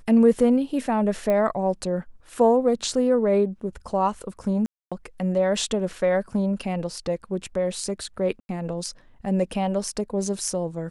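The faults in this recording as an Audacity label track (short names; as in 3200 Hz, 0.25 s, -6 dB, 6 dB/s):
1.300000	1.300000	pop -14 dBFS
4.660000	4.920000	gap 0.256 s
8.400000	8.490000	gap 91 ms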